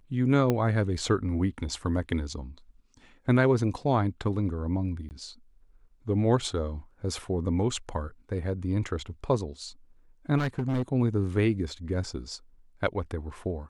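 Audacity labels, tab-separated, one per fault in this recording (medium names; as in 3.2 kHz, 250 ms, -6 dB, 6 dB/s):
0.500000	0.500000	pop -13 dBFS
5.090000	5.110000	dropout 19 ms
10.370000	10.830000	clipped -23.5 dBFS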